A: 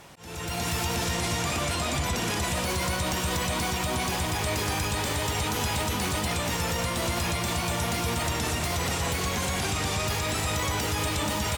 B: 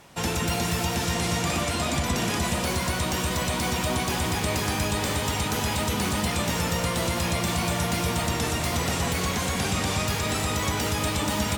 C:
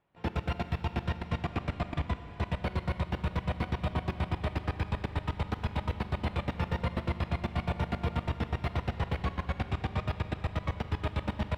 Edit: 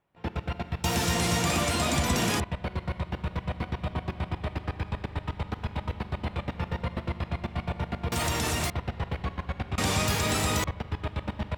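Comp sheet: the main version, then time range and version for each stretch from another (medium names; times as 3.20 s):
C
0.84–2.40 s: from B
8.12–8.70 s: from A
9.78–10.64 s: from B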